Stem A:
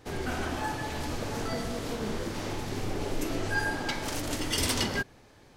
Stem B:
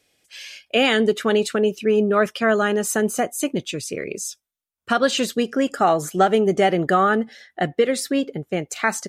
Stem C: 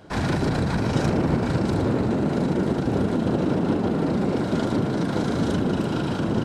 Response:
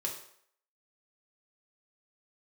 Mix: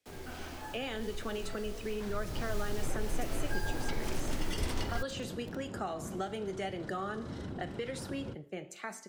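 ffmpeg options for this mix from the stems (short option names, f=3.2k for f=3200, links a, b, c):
-filter_complex "[0:a]asubboost=boost=7:cutoff=74,acrusher=bits=6:mix=0:aa=0.000001,volume=-4dB,afade=t=in:st=2.18:d=0.42:silence=0.398107[a];[1:a]dynaudnorm=f=210:g=9:m=5dB,flanger=delay=8.5:depth=7.5:regen=-81:speed=0.88:shape=triangular,volume=-15dB,asplit=3[b][c][d];[c]volume=-9.5dB[e];[2:a]acrossover=split=130[f][g];[g]acompressor=threshold=-34dB:ratio=3[h];[f][h]amix=inputs=2:normalize=0,adelay=1900,volume=-10.5dB,asplit=2[i][j];[j]volume=-16.5dB[k];[d]apad=whole_len=372417[l];[i][l]sidechaincompress=threshold=-35dB:ratio=8:attack=16:release=144[m];[3:a]atrim=start_sample=2205[n];[e][k]amix=inputs=2:normalize=0[o];[o][n]afir=irnorm=-1:irlink=0[p];[a][b][m][p]amix=inputs=4:normalize=0,acrossover=split=84|180|1100|3000[q][r][s][t][u];[q]acompressor=threshold=-30dB:ratio=4[v];[r]acompressor=threshold=-50dB:ratio=4[w];[s]acompressor=threshold=-37dB:ratio=4[x];[t]acompressor=threshold=-45dB:ratio=4[y];[u]acompressor=threshold=-46dB:ratio=4[z];[v][w][x][y][z]amix=inputs=5:normalize=0"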